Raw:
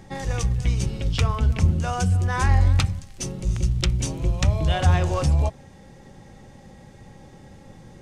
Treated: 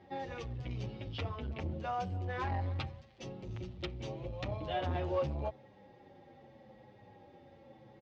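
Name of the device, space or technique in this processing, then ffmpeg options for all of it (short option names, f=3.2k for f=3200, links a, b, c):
barber-pole flanger into a guitar amplifier: -filter_complex "[0:a]asplit=2[a][b];[b]adelay=8.1,afreqshift=-0.83[c];[a][c]amix=inputs=2:normalize=1,asoftclip=type=tanh:threshold=-18dB,highpass=110,equalizer=f=170:t=q:w=4:g=-8,equalizer=f=340:t=q:w=4:g=4,equalizer=f=550:t=q:w=4:g=6,equalizer=f=800:t=q:w=4:g=4,equalizer=f=1.5k:t=q:w=4:g=-3,lowpass=f=4k:w=0.5412,lowpass=f=4k:w=1.3066,volume=-8dB"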